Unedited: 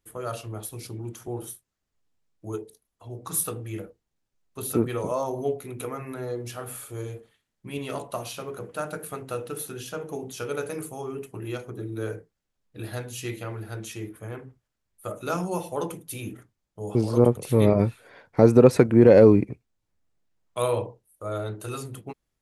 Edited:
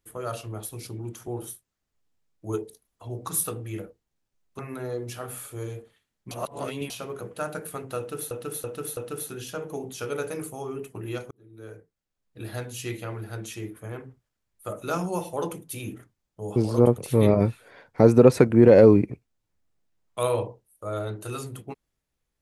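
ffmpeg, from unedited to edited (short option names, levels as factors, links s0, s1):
-filter_complex "[0:a]asplit=10[s0][s1][s2][s3][s4][s5][s6][s7][s8][s9];[s0]atrim=end=2.492[s10];[s1]atrim=start=2.488:end=3.292,asetpts=PTS-STARTPTS,volume=1.5[s11];[s2]atrim=start=3.288:end=4.592[s12];[s3]atrim=start=5.968:end=7.692[s13];[s4]atrim=start=7.688:end=8.282,asetpts=PTS-STARTPTS,areverse[s14];[s5]atrim=start=8.278:end=9.692[s15];[s6]atrim=start=9.358:end=9.692[s16];[s7]atrim=start=9.358:end=9.692[s17];[s8]atrim=start=9.358:end=11.7,asetpts=PTS-STARTPTS,afade=t=out:st=2.338:d=0.004:c=hsin[s18];[s9]atrim=start=11.7,asetpts=PTS-STARTPTS,afade=t=in:d=1.3[s19];[s10][s11]acrossfade=d=0.004:c1=hsin:c2=hsin[s20];[s20][s12]acrossfade=d=0.004:c1=hsin:c2=hsin[s21];[s21][s13]acrossfade=d=0.004:c1=hsin:c2=hsin[s22];[s22][s14]acrossfade=d=0.004:c1=hsin:c2=hsin[s23];[s23][s15]acrossfade=d=0.004:c1=hsin:c2=hsin[s24];[s24][s16]acrossfade=d=0.004:c1=hsin:c2=hsin[s25];[s25][s17]acrossfade=d=0.004:c1=hsin:c2=hsin[s26];[s18][s19]concat=n=2:v=0:a=1[s27];[s26][s27]acrossfade=d=0.004:c1=hsin:c2=hsin"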